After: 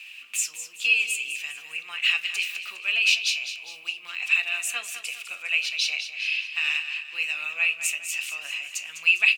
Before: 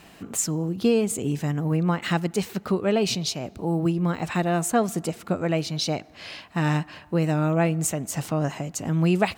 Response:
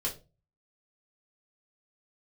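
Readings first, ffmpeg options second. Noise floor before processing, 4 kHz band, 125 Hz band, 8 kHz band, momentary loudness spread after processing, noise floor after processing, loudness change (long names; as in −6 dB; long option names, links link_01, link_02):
−50 dBFS, +7.5 dB, below −40 dB, 0.0 dB, 12 LU, −45 dBFS, +0.5 dB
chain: -filter_complex "[0:a]highpass=frequency=2600:width_type=q:width=12,aecho=1:1:203|406|609|812|1015:0.299|0.137|0.0632|0.0291|0.0134,asplit=2[link_01][link_02];[1:a]atrim=start_sample=2205,asetrate=48510,aresample=44100[link_03];[link_02][link_03]afir=irnorm=-1:irlink=0,volume=-8.5dB[link_04];[link_01][link_04]amix=inputs=2:normalize=0,volume=-3.5dB"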